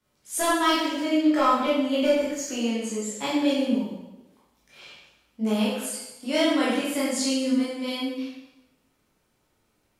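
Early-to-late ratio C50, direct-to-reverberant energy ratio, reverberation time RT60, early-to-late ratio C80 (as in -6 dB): -0.5 dB, -9.5 dB, 1.0 s, 3.0 dB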